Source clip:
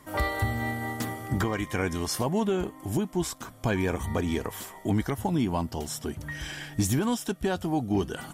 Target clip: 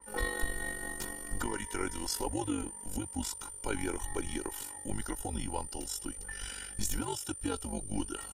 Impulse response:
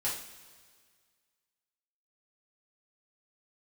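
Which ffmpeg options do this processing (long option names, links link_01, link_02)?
-af "aecho=1:1:2:0.76,aeval=exprs='val(0)+0.0126*sin(2*PI*9200*n/s)':channel_layout=same,afreqshift=-100,tremolo=f=48:d=0.667,adynamicequalizer=threshold=0.00501:dfrequency=3200:dqfactor=0.7:tfrequency=3200:tqfactor=0.7:attack=5:release=100:ratio=0.375:range=2:mode=boostabove:tftype=highshelf,volume=-6dB"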